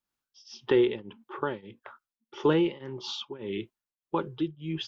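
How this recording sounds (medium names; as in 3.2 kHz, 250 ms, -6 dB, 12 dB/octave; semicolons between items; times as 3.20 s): tremolo triangle 1.7 Hz, depth 95%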